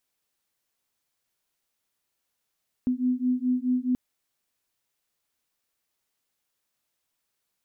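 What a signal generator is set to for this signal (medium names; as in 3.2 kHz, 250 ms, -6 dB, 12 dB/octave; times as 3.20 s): beating tones 249 Hz, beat 4.7 Hz, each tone -25.5 dBFS 1.08 s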